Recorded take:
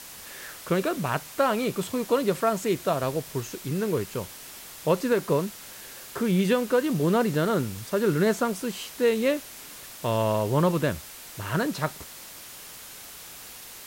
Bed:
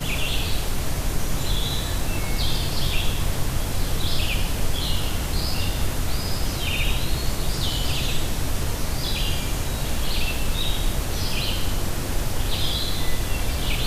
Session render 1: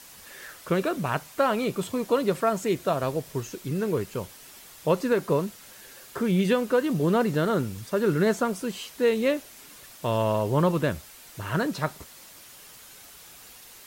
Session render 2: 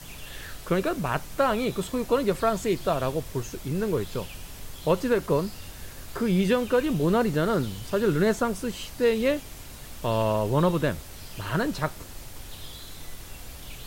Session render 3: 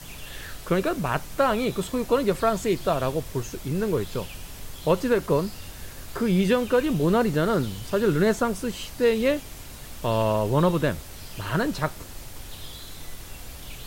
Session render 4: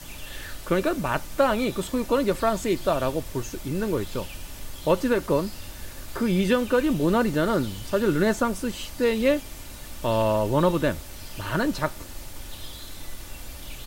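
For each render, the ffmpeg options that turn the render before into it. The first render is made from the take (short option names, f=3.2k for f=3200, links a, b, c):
-af "afftdn=nr=6:nf=-44"
-filter_complex "[1:a]volume=-18dB[a];[0:a][a]amix=inputs=2:normalize=0"
-af "volume=1.5dB"
-af "aecho=1:1:3.4:0.32"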